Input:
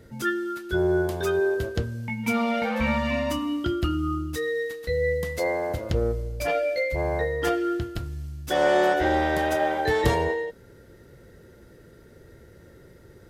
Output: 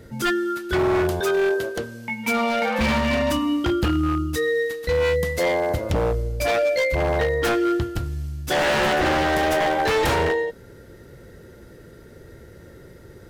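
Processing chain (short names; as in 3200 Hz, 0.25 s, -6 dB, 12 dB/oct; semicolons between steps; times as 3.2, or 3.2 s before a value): 1.2–2.79 Bessel high-pass 330 Hz, order 2; wavefolder -20.5 dBFS; gain +5.5 dB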